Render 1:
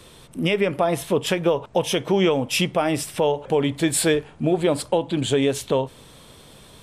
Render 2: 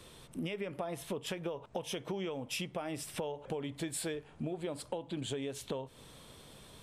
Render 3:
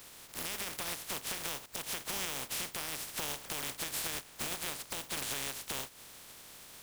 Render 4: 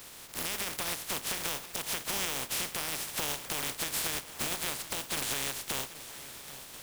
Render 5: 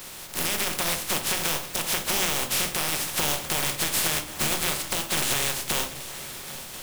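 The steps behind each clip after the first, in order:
compressor 6:1, threshold -28 dBFS, peak gain reduction 13 dB; gain -7.5 dB
spectral contrast lowered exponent 0.16; limiter -27.5 dBFS, peak gain reduction 10 dB; gain +2.5 dB
swung echo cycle 1.041 s, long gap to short 3:1, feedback 37%, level -16 dB; gain +4 dB
shoebox room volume 260 m³, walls furnished, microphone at 1 m; gain +7 dB

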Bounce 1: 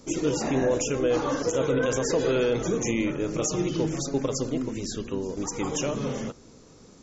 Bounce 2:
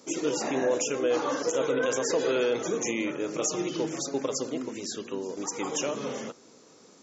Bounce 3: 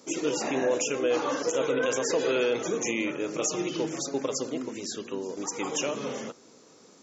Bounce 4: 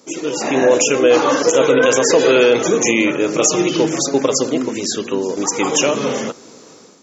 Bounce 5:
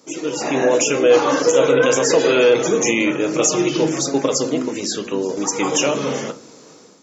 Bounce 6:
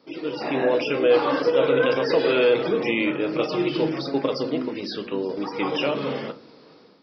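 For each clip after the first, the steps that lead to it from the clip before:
Bessel high-pass 350 Hz, order 2
dynamic EQ 2600 Hz, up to +4 dB, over -47 dBFS, Q 2.9
AGC gain up to 9.5 dB; gain +4.5 dB
shoebox room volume 120 m³, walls furnished, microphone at 0.53 m; gain -3 dB
downsampling 11025 Hz; gain -5 dB

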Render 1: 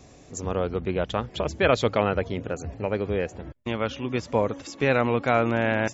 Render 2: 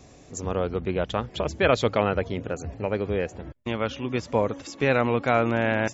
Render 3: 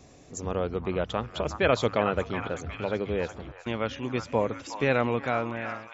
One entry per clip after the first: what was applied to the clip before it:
nothing audible
ending faded out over 0.92 s; notches 50/100 Hz; delay with a stepping band-pass 0.366 s, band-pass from 1100 Hz, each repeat 0.7 oct, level -6 dB; gain -2.5 dB

